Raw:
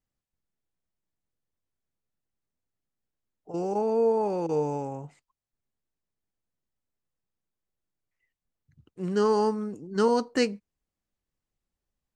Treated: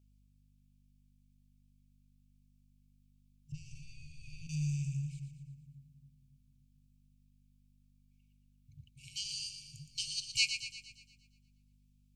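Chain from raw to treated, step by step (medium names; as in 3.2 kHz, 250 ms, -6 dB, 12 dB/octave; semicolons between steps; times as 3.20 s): FFT band-reject 160–2200 Hz; 3.52–4.47 s: tilt EQ -4 dB/octave; hum 50 Hz, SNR 22 dB; two-band feedback delay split 410 Hz, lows 272 ms, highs 117 ms, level -8.5 dB; trim +4.5 dB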